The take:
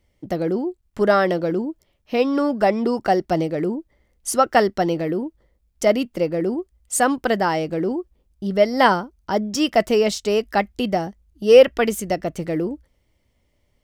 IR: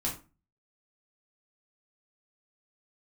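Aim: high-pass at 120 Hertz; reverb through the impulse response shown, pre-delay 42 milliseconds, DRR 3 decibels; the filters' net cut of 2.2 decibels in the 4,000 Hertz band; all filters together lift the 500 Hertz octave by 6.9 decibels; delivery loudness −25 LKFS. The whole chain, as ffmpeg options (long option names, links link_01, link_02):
-filter_complex "[0:a]highpass=120,equalizer=frequency=500:width_type=o:gain=8,equalizer=frequency=4000:width_type=o:gain=-3.5,asplit=2[link_01][link_02];[1:a]atrim=start_sample=2205,adelay=42[link_03];[link_02][link_03]afir=irnorm=-1:irlink=0,volume=-7.5dB[link_04];[link_01][link_04]amix=inputs=2:normalize=0,volume=-11.5dB"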